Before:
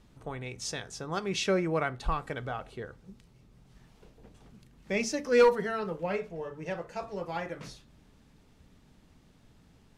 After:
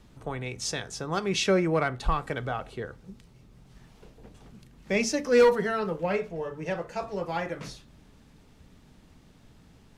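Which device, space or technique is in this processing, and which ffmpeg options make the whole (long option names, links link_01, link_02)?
one-band saturation: -filter_complex "[0:a]acrossover=split=360|4300[link_01][link_02][link_03];[link_02]asoftclip=type=tanh:threshold=-20.5dB[link_04];[link_01][link_04][link_03]amix=inputs=3:normalize=0,volume=4.5dB"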